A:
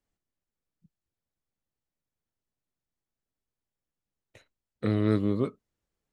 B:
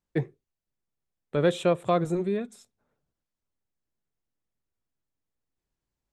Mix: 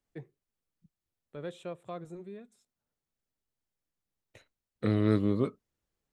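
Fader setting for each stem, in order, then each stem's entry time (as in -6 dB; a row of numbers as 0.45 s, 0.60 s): -1.0 dB, -17.0 dB; 0.00 s, 0.00 s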